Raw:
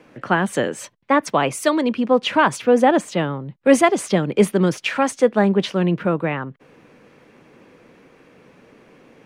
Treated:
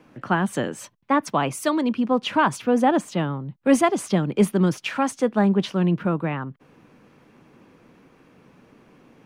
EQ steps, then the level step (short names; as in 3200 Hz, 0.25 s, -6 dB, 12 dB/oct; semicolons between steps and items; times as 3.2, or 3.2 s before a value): graphic EQ 500/2000/4000/8000 Hz -7/-6/-3/-4 dB; 0.0 dB